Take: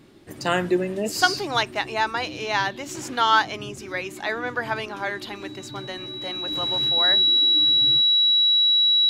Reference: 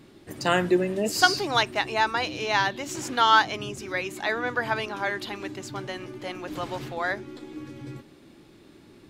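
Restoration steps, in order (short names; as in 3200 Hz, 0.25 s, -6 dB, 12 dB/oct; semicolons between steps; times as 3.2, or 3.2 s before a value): notch 3900 Hz, Q 30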